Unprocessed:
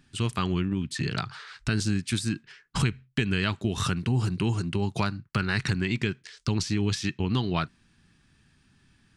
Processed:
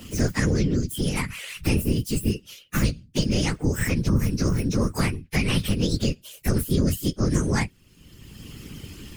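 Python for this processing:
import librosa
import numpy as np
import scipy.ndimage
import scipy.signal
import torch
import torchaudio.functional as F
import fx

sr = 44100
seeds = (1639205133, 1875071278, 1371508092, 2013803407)

y = fx.partial_stretch(x, sr, pct=129)
y = fx.whisperise(y, sr, seeds[0])
y = fx.band_squash(y, sr, depth_pct=70)
y = y * librosa.db_to_amplitude(6.0)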